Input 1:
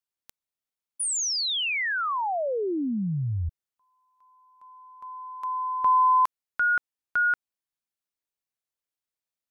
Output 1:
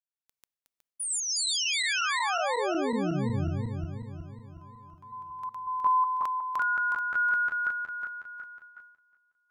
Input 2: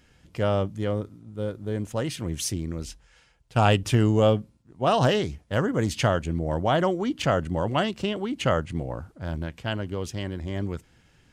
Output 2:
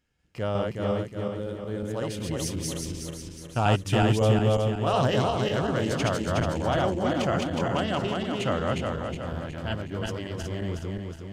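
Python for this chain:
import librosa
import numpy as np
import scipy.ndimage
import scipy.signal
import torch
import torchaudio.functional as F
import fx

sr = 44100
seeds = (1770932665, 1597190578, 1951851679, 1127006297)

y = fx.reverse_delay_fb(x, sr, ms=183, feedback_pct=69, wet_db=-0.5)
y = fx.gate_hold(y, sr, open_db=-36.0, close_db=-38.0, hold_ms=56.0, range_db=-12, attack_ms=1.1, release_ms=186.0)
y = y * 10.0 ** (-5.0 / 20.0)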